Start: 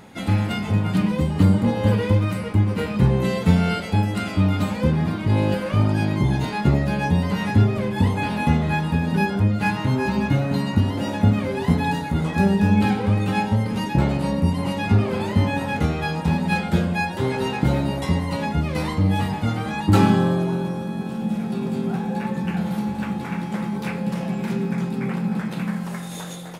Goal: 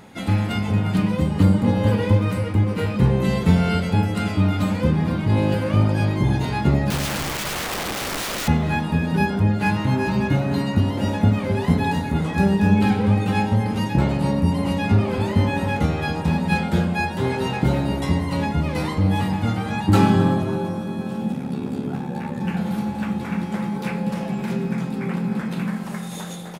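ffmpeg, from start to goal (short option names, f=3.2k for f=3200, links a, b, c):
-filter_complex "[0:a]asettb=1/sr,asplit=3[a][b][c];[a]atrim=end=6.904[d];[b]atrim=start=6.9:end=8.48,asetpts=PTS-STARTPTS,afade=t=in:d=0.004:c=qsin,afade=t=out:st=1.576:d=0.004:c=qsin,aeval=exprs='(mod(13.3*val(0)+1,2)-1)/13.3':c=same[e];[c]atrim=start=8.476[f];[d][e]acrossfade=d=0.004:c1=hsin:c2=qsin[g];[g][f]acrossfade=d=0.004:c1=qsin:c2=hsin,asplit=3[h][i][j];[h]afade=t=out:st=21.31:d=0.02[k];[i]aeval=exprs='val(0)*sin(2*PI*35*n/s)':c=same,afade=t=in:st=21.31:d=0.02,afade=t=out:st=22.39:d=0.02[l];[j]afade=t=in:st=22.39:d=0.02[m];[k][l][m]amix=inputs=3:normalize=0,asplit=2[n][o];[o]adelay=265,lowpass=f=1k:p=1,volume=-8dB,asplit=2[p][q];[q]adelay=265,lowpass=f=1k:p=1,volume=0.46,asplit=2[r][s];[s]adelay=265,lowpass=f=1k:p=1,volume=0.46,asplit=2[t][u];[u]adelay=265,lowpass=f=1k:p=1,volume=0.46,asplit=2[v][w];[w]adelay=265,lowpass=f=1k:p=1,volume=0.46[x];[n][p][r][t][v][x]amix=inputs=6:normalize=0"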